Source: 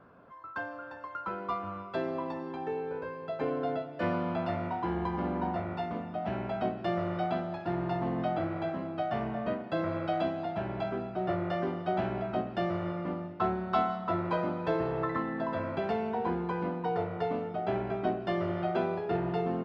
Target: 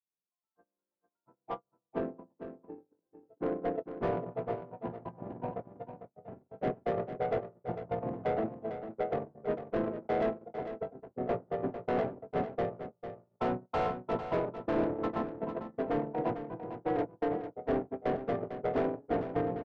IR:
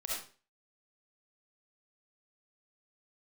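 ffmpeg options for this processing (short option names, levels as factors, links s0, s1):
-filter_complex "[0:a]bandreject=f=50:t=h:w=6,bandreject=f=100:t=h:w=6,bandreject=f=150:t=h:w=6,bandreject=f=200:t=h:w=6,bandreject=f=250:t=h:w=6,bandreject=f=300:t=h:w=6,bandreject=f=350:t=h:w=6,agate=range=0.00282:threshold=0.0316:ratio=16:detection=peak,highpass=180,adynamicequalizer=threshold=0.00891:dfrequency=590:dqfactor=0.99:tfrequency=590:tqfactor=0.99:attack=5:release=100:ratio=0.375:range=2.5:mode=boostabove:tftype=bell,asplit=2[s0][s1];[s1]acompressor=threshold=0.0178:ratio=6,volume=0.794[s2];[s0][s2]amix=inputs=2:normalize=0,asoftclip=type=hard:threshold=0.0531,adynamicsmooth=sensitivity=1:basefreq=800,asplit=3[s3][s4][s5];[s4]asetrate=29433,aresample=44100,atempo=1.49831,volume=0.891[s6];[s5]asetrate=33038,aresample=44100,atempo=1.33484,volume=0.398[s7];[s3][s6][s7]amix=inputs=3:normalize=0,aecho=1:1:450:0.316,volume=0.75"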